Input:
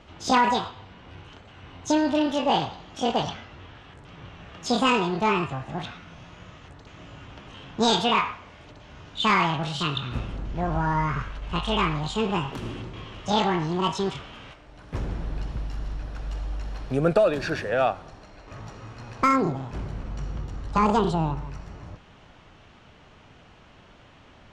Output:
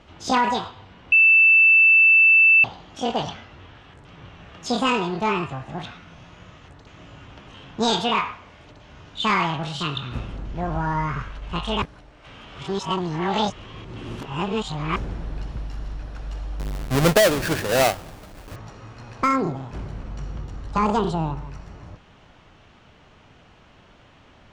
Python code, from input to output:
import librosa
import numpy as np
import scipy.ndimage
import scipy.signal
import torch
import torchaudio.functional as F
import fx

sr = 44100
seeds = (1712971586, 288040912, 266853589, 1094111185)

y = fx.halfwave_hold(x, sr, at=(16.59, 18.56))
y = fx.edit(y, sr, fx.bleep(start_s=1.12, length_s=1.52, hz=2650.0, db=-10.5),
    fx.reverse_span(start_s=11.82, length_s=3.14), tone=tone)